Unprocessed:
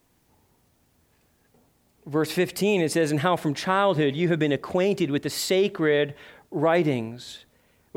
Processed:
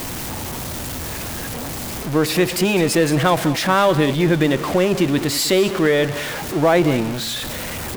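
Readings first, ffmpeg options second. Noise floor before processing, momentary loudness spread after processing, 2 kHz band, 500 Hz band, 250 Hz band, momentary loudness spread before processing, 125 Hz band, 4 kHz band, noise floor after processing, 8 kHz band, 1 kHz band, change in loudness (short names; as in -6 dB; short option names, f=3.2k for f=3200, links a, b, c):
-66 dBFS, 11 LU, +7.0 dB, +5.0 dB, +6.5 dB, 8 LU, +7.5 dB, +9.0 dB, -28 dBFS, +11.5 dB, +6.5 dB, +5.0 dB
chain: -af "aeval=exprs='val(0)+0.5*0.0473*sgn(val(0))':c=same,bandreject=f=420:w=12,aecho=1:1:202:0.188,volume=4.5dB"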